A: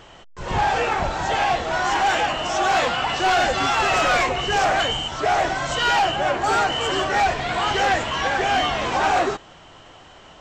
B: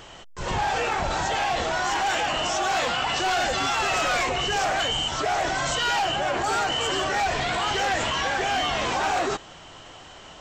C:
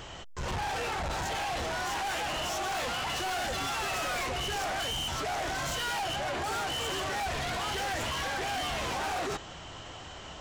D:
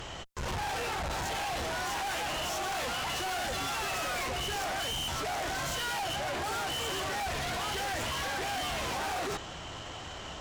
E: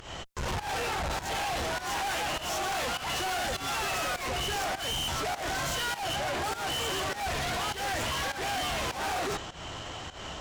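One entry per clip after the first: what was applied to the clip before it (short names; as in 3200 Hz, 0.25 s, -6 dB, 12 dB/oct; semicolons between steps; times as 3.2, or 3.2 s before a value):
high shelf 4200 Hz +7.5 dB; in parallel at -2 dB: negative-ratio compressor -26 dBFS, ratio -1; on the sum: gain -7.5 dB
bell 69 Hz +7 dB 1.9 oct; soft clip -31 dBFS, distortion -8 dB
tube stage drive 36 dB, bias 0.35; gain +4 dB
pump 101 bpm, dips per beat 1, -15 dB, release 0.172 s; gain +2.5 dB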